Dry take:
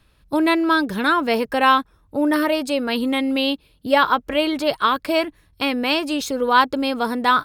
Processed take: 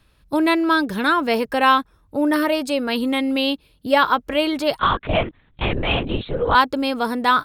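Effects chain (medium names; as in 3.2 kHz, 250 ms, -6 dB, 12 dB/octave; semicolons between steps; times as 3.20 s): 4.79–6.55 s: LPC vocoder at 8 kHz whisper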